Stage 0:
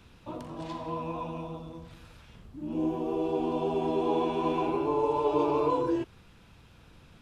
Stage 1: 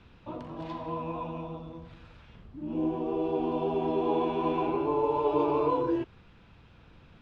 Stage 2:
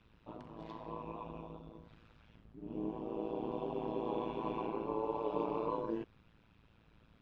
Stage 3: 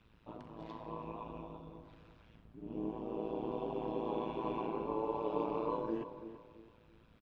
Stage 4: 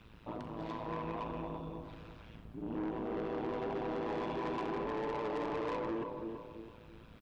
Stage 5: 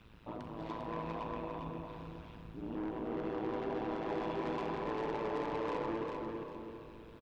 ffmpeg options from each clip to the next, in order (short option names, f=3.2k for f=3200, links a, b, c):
-af "lowpass=3.5k"
-af "tremolo=f=110:d=0.919,volume=-6dB"
-filter_complex "[0:a]asplit=2[a][b];[b]adelay=333,lowpass=f=2k:p=1,volume=-11dB,asplit=2[c][d];[d]adelay=333,lowpass=f=2k:p=1,volume=0.34,asplit=2[e][f];[f]adelay=333,lowpass=f=2k:p=1,volume=0.34,asplit=2[g][h];[h]adelay=333,lowpass=f=2k:p=1,volume=0.34[i];[a][c][e][g][i]amix=inputs=5:normalize=0"
-filter_complex "[0:a]asplit=2[a][b];[b]alimiter=level_in=5.5dB:limit=-24dB:level=0:latency=1:release=439,volume=-5.5dB,volume=3dB[c];[a][c]amix=inputs=2:normalize=0,asoftclip=type=tanh:threshold=-34dB,volume=1dB"
-af "aecho=1:1:400|800|1200|1600:0.596|0.179|0.0536|0.0161,volume=-1.5dB"